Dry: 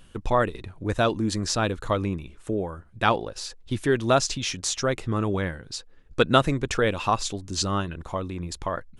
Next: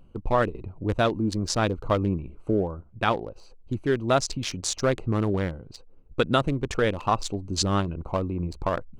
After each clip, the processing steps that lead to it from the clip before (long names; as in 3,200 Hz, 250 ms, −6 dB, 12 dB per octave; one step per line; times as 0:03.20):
adaptive Wiener filter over 25 samples
speech leveller within 3 dB 0.5 s
boost into a limiter +9.5 dB
level −8.5 dB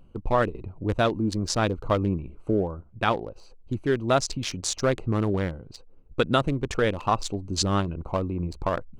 no processing that can be heard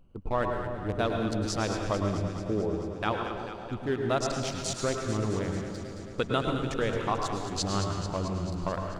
delay that swaps between a low-pass and a high-pass 110 ms, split 1,000 Hz, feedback 83%, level −7 dB
on a send at −4.5 dB: convolution reverb RT60 0.90 s, pre-delay 98 ms
on the sum: level −6.5 dB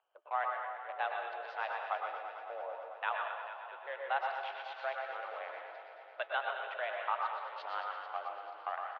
flanger 0.37 Hz, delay 2.8 ms, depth 3.1 ms, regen −86%
single-tap delay 123 ms −7 dB
single-sideband voice off tune +140 Hz 530–3,000 Hz